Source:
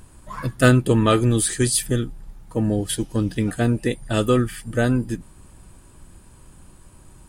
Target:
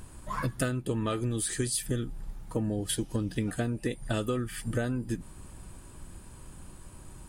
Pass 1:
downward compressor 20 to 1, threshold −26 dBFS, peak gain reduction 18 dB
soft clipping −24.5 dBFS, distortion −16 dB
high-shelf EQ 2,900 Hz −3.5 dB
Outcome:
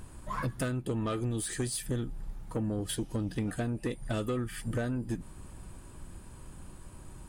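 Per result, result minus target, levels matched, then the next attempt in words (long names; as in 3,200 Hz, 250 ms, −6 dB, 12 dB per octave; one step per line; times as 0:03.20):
soft clipping: distortion +19 dB; 8,000 Hz band −2.5 dB
downward compressor 20 to 1, threshold −26 dBFS, peak gain reduction 18 dB
soft clipping −12.5 dBFS, distortion −35 dB
high-shelf EQ 2,900 Hz −3.5 dB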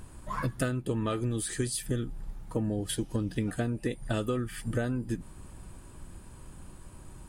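8,000 Hz band −2.5 dB
downward compressor 20 to 1, threshold −26 dBFS, peak gain reduction 18 dB
soft clipping −12.5 dBFS, distortion −35 dB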